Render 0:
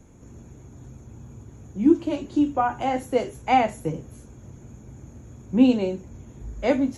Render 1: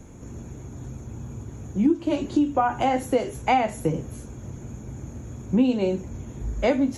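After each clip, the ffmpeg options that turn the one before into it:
ffmpeg -i in.wav -af "acompressor=threshold=-25dB:ratio=4,volume=6.5dB" out.wav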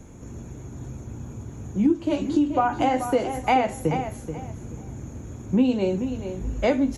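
ffmpeg -i in.wav -filter_complex "[0:a]asplit=2[link_01][link_02];[link_02]adelay=431,lowpass=frequency=4100:poles=1,volume=-9dB,asplit=2[link_03][link_04];[link_04]adelay=431,lowpass=frequency=4100:poles=1,volume=0.24,asplit=2[link_05][link_06];[link_06]adelay=431,lowpass=frequency=4100:poles=1,volume=0.24[link_07];[link_01][link_03][link_05][link_07]amix=inputs=4:normalize=0" out.wav

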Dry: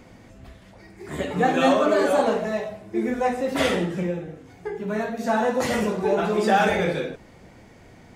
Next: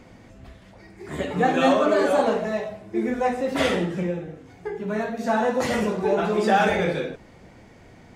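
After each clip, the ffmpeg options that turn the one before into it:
ffmpeg -i in.wav -af "highshelf=frequency=9800:gain=-6.5" out.wav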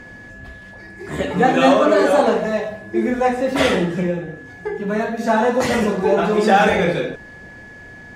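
ffmpeg -i in.wav -af "aeval=exprs='val(0)+0.00631*sin(2*PI*1700*n/s)':channel_layout=same,volume=5.5dB" out.wav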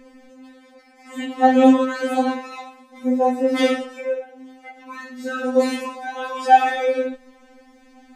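ffmpeg -i in.wav -af "afftfilt=real='re*3.46*eq(mod(b,12),0)':imag='im*3.46*eq(mod(b,12),0)':win_size=2048:overlap=0.75,volume=-3dB" out.wav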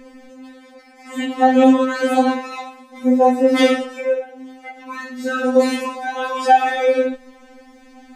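ffmpeg -i in.wav -af "alimiter=limit=-8dB:level=0:latency=1:release=387,volume=5dB" out.wav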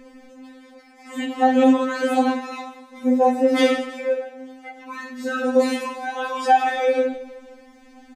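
ffmpeg -i in.wav -af "aecho=1:1:157|314|471|628:0.158|0.0745|0.035|0.0165,volume=-3.5dB" out.wav

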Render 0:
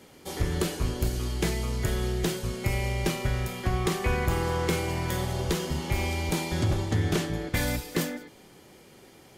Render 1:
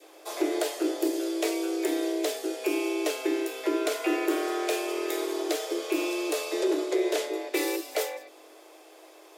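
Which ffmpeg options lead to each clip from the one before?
ffmpeg -i in.wav -af "adynamicequalizer=threshold=0.00562:dfrequency=660:dqfactor=0.8:tfrequency=660:tqfactor=0.8:attack=5:release=100:ratio=0.375:range=3.5:mode=cutabove:tftype=bell,aeval=exprs='val(0)+0.00126*(sin(2*PI*50*n/s)+sin(2*PI*2*50*n/s)/2+sin(2*PI*3*50*n/s)/3+sin(2*PI*4*50*n/s)/4+sin(2*PI*5*50*n/s)/5)':channel_layout=same,afreqshift=270" out.wav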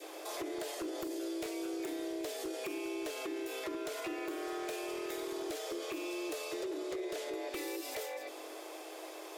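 ffmpeg -i in.wav -af "acompressor=threshold=-29dB:ratio=16,aeval=exprs='0.0473*(abs(mod(val(0)/0.0473+3,4)-2)-1)':channel_layout=same,alimiter=level_in=13.5dB:limit=-24dB:level=0:latency=1:release=123,volume=-13.5dB,volume=5dB" out.wav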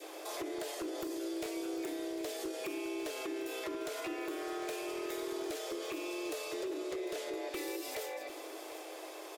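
ffmpeg -i in.wav -af "aecho=1:1:752:0.211" out.wav

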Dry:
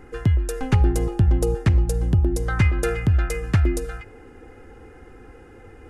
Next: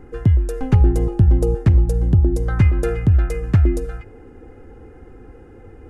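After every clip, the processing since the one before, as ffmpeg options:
ffmpeg -i in.wav -af "tiltshelf=frequency=910:gain=5.5,volume=-1dB" out.wav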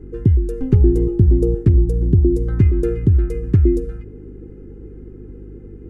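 ffmpeg -i in.wav -af "aeval=exprs='val(0)+0.0141*(sin(2*PI*50*n/s)+sin(2*PI*2*50*n/s)/2+sin(2*PI*3*50*n/s)/3+sin(2*PI*4*50*n/s)/4+sin(2*PI*5*50*n/s)/5)':channel_layout=same,lowshelf=frequency=510:width_type=q:width=3:gain=9.5,volume=-9.5dB" out.wav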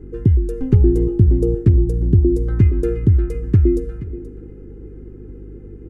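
ffmpeg -i in.wav -af "aecho=1:1:478:0.158" out.wav

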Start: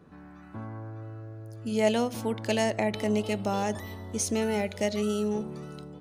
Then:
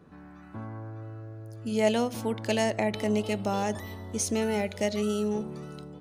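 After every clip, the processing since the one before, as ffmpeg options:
ffmpeg -i in.wav -af anull out.wav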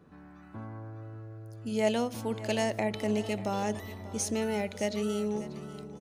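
ffmpeg -i in.wav -af "aecho=1:1:590|1180|1770:0.158|0.0507|0.0162,volume=-3dB" out.wav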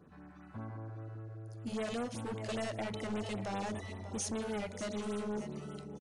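ffmpeg -i in.wav -af "volume=32.5dB,asoftclip=hard,volume=-32.5dB,aresample=22050,aresample=44100,afftfilt=real='re*(1-between(b*sr/1024,240*pow(5900/240,0.5+0.5*sin(2*PI*5.1*pts/sr))/1.41,240*pow(5900/240,0.5+0.5*sin(2*PI*5.1*pts/sr))*1.41))':imag='im*(1-between(b*sr/1024,240*pow(5900/240,0.5+0.5*sin(2*PI*5.1*pts/sr))/1.41,240*pow(5900/240,0.5+0.5*sin(2*PI*5.1*pts/sr))*1.41))':win_size=1024:overlap=0.75,volume=-1.5dB" out.wav

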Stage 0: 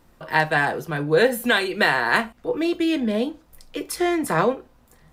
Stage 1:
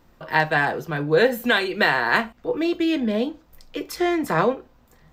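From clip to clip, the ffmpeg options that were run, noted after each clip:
ffmpeg -i in.wav -af "equalizer=frequency=10000:width=2.5:gain=-14.5" out.wav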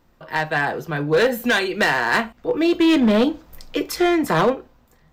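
ffmpeg -i in.wav -af "dynaudnorm=framelen=100:gausssize=11:maxgain=16dB,volume=9dB,asoftclip=hard,volume=-9dB,volume=-3dB" out.wav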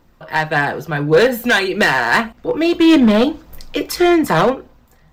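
ffmpeg -i in.wav -af "aphaser=in_gain=1:out_gain=1:delay=1.6:decay=0.25:speed=1.7:type=triangular,volume=4dB" out.wav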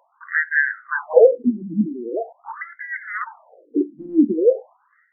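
ffmpeg -i in.wav -af "asuperstop=centerf=2700:order=20:qfactor=2.1,highshelf=frequency=3500:gain=-11,afftfilt=real='re*between(b*sr/1024,230*pow(2100/230,0.5+0.5*sin(2*PI*0.43*pts/sr))/1.41,230*pow(2100/230,0.5+0.5*sin(2*PI*0.43*pts/sr))*1.41)':imag='im*between(b*sr/1024,230*pow(2100/230,0.5+0.5*sin(2*PI*0.43*pts/sr))/1.41,230*pow(2100/230,0.5+0.5*sin(2*PI*0.43*pts/sr))*1.41)':win_size=1024:overlap=0.75,volume=3.5dB" out.wav

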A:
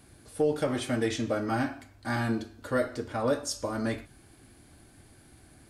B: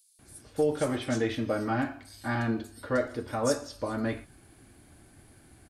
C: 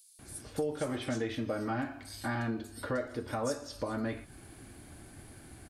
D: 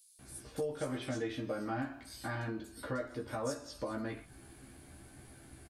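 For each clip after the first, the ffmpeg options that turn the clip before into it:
ffmpeg -i in.wav -filter_complex "[0:a]acrossover=split=4400[link_01][link_02];[link_01]adelay=190[link_03];[link_03][link_02]amix=inputs=2:normalize=0" out.wav
ffmpeg -i in.wav -af "acompressor=threshold=-40dB:ratio=2.5,volume=4.5dB" out.wav
ffmpeg -i in.wav -filter_complex "[0:a]asplit=2[link_01][link_02];[link_02]adelay=15,volume=-3.5dB[link_03];[link_01][link_03]amix=inputs=2:normalize=0,volume=-5dB" out.wav

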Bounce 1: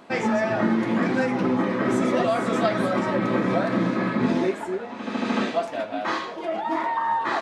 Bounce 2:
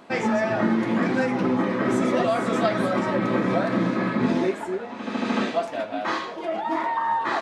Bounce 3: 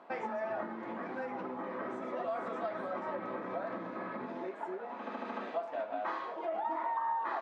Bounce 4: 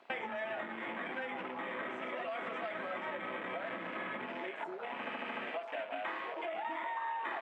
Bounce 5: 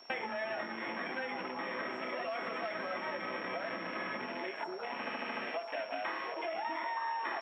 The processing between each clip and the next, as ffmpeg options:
ffmpeg -i in.wav -af anull out.wav
ffmpeg -i in.wav -af "acompressor=threshold=-27dB:ratio=6,bandpass=frequency=850:width_type=q:width=1:csg=0,volume=-3.5dB" out.wav
ffmpeg -i in.wav -filter_complex "[0:a]highshelf=frequency=1700:width_type=q:width=1.5:gain=11.5,afwtdn=0.00708,acrossover=split=650|1400[link_01][link_02][link_03];[link_01]acompressor=threshold=-55dB:ratio=4[link_04];[link_02]acompressor=threshold=-51dB:ratio=4[link_05];[link_03]acompressor=threshold=-53dB:ratio=4[link_06];[link_04][link_05][link_06]amix=inputs=3:normalize=0,volume=7.5dB" out.wav
ffmpeg -i in.wav -af "aeval=exprs='val(0)+0.00158*sin(2*PI*5500*n/s)':channel_layout=same,volume=1.5dB" out.wav

